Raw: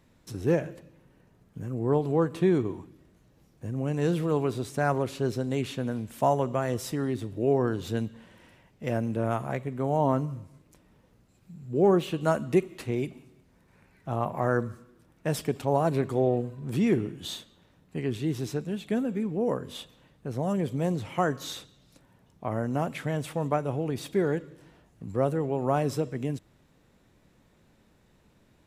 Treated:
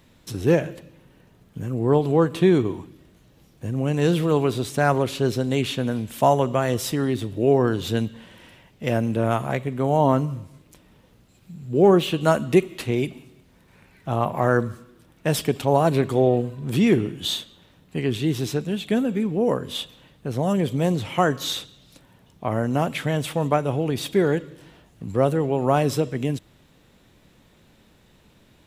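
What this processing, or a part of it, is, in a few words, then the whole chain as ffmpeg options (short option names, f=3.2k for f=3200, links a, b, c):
presence and air boost: -af "equalizer=f=3.3k:t=o:w=0.89:g=6,highshelf=f=12k:g=6.5,volume=6dB"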